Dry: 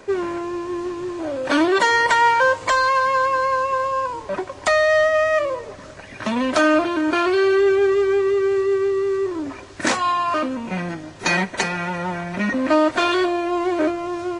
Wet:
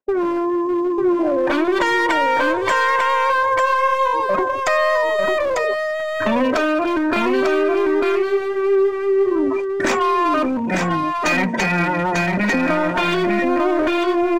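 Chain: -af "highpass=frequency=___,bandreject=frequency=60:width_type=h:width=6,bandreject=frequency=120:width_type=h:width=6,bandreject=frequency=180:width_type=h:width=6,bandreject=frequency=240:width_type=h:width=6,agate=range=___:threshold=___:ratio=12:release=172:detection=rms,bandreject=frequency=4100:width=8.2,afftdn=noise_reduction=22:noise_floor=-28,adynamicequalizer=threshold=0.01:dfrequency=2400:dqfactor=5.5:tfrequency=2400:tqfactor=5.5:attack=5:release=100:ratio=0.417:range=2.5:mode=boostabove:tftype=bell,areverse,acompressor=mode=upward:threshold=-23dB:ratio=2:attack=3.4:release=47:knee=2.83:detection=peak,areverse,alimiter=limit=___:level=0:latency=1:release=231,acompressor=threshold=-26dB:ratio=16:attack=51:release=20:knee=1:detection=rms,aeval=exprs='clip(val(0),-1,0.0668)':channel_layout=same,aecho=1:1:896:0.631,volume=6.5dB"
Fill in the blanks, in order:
77, -53dB, -33dB, -11.5dB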